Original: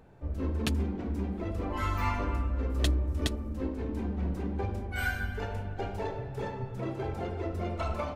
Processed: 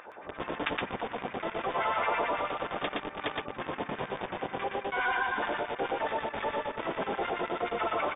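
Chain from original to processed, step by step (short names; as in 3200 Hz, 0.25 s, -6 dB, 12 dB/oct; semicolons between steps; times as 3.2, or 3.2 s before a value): LFO high-pass sine 9.4 Hz 730–2200 Hz; low shelf 66 Hz -3 dB; harmoniser -12 st -7 dB, -7 st -4 dB; tilt -2 dB/oct; in parallel at -4 dB: companded quantiser 2-bit; on the sum: brick-wall FIR low-pass 3700 Hz; on a send: echo 0.118 s -3.5 dB; on the sum: fast leveller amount 50%; gain -8 dB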